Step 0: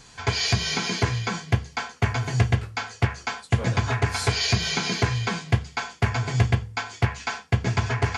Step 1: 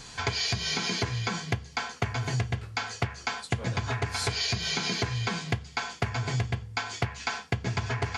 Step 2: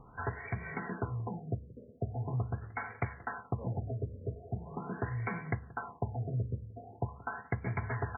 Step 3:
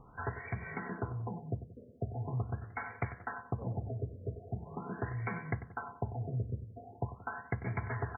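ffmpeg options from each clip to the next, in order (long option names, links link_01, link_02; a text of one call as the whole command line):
ffmpeg -i in.wav -af "equalizer=frequency=4100:width=1.5:gain=2.5,acompressor=threshold=-30dB:ratio=6,volume=3.5dB" out.wav
ffmpeg -i in.wav -filter_complex "[0:a]asplit=2[link_01][link_02];[link_02]adelay=179,lowpass=frequency=2000:poles=1,volume=-20dB,asplit=2[link_03][link_04];[link_04]adelay=179,lowpass=frequency=2000:poles=1,volume=0.45,asplit=2[link_05][link_06];[link_06]adelay=179,lowpass=frequency=2000:poles=1,volume=0.45[link_07];[link_01][link_03][link_05][link_07]amix=inputs=4:normalize=0,afftfilt=real='re*lt(b*sr/1024,630*pow(2400/630,0.5+0.5*sin(2*PI*0.42*pts/sr)))':imag='im*lt(b*sr/1024,630*pow(2400/630,0.5+0.5*sin(2*PI*0.42*pts/sr)))':win_size=1024:overlap=0.75,volume=-5dB" out.wav
ffmpeg -i in.wav -filter_complex "[0:a]asplit=2[link_01][link_02];[link_02]adelay=95,lowpass=frequency=2100:poles=1,volume=-13dB,asplit=2[link_03][link_04];[link_04]adelay=95,lowpass=frequency=2100:poles=1,volume=0.31,asplit=2[link_05][link_06];[link_06]adelay=95,lowpass=frequency=2100:poles=1,volume=0.31[link_07];[link_01][link_03][link_05][link_07]amix=inputs=4:normalize=0,volume=-1.5dB" out.wav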